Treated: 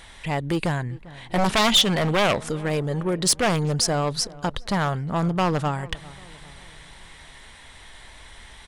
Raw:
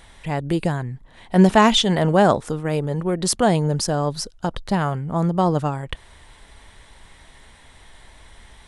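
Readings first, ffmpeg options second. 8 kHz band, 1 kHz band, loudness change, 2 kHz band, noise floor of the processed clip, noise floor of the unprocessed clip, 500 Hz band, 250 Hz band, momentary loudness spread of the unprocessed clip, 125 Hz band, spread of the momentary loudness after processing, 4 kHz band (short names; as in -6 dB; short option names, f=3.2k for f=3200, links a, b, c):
+2.5 dB, -3.5 dB, -2.5 dB, +1.0 dB, -46 dBFS, -49 dBFS, -4.5 dB, -5.5 dB, 13 LU, -3.5 dB, 13 LU, +2.5 dB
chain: -filter_complex "[0:a]aeval=exprs='0.237*(abs(mod(val(0)/0.237+3,4)-2)-1)':c=same,highshelf=f=4.5k:g=-7.5,aeval=exprs='0.237*(cos(1*acos(clip(val(0)/0.237,-1,1)))-cos(1*PI/2))+0.00841*(cos(5*acos(clip(val(0)/0.237,-1,1)))-cos(5*PI/2))':c=same,asoftclip=type=tanh:threshold=-13dB,tiltshelf=f=1.5k:g=-5,asplit=2[a][b];[b]adelay=397,lowpass=f=1.6k:p=1,volume=-20dB,asplit=2[c][d];[d]adelay=397,lowpass=f=1.6k:p=1,volume=0.52,asplit=2[e][f];[f]adelay=397,lowpass=f=1.6k:p=1,volume=0.52,asplit=2[g][h];[h]adelay=397,lowpass=f=1.6k:p=1,volume=0.52[i];[a][c][e][g][i]amix=inputs=5:normalize=0,volume=3dB"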